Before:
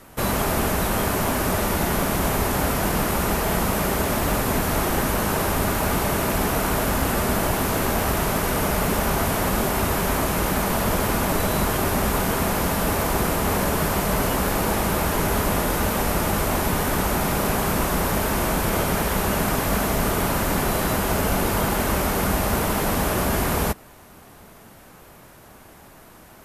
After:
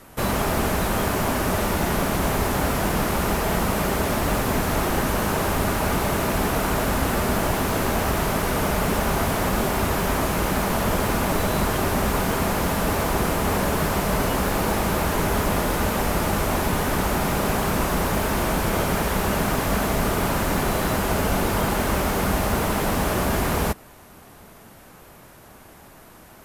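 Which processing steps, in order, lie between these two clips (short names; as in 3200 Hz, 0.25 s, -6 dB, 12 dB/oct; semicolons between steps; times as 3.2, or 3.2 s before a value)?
slew limiter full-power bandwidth 240 Hz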